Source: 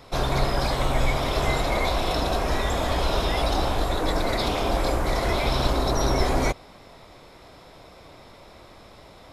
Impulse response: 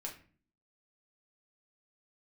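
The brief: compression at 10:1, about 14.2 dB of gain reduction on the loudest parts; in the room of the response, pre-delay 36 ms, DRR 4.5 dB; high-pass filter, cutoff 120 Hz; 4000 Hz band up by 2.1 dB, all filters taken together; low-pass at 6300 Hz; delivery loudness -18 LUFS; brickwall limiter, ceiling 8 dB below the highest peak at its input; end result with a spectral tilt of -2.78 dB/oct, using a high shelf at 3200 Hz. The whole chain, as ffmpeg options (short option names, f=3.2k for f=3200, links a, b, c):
-filter_complex "[0:a]highpass=120,lowpass=6.3k,highshelf=f=3.2k:g=-3.5,equalizer=f=4k:t=o:g=5.5,acompressor=threshold=-36dB:ratio=10,alimiter=level_in=9dB:limit=-24dB:level=0:latency=1,volume=-9dB,asplit=2[a][b];[1:a]atrim=start_sample=2205,adelay=36[c];[b][c]afir=irnorm=-1:irlink=0,volume=-3dB[d];[a][d]amix=inputs=2:normalize=0,volume=23.5dB"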